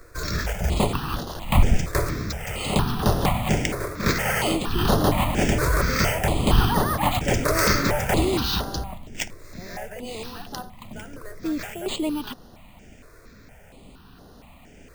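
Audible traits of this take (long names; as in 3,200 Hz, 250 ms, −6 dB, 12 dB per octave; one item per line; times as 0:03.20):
aliases and images of a low sample rate 11,000 Hz, jitter 0%
notches that jump at a steady rate 4.3 Hz 810–7,800 Hz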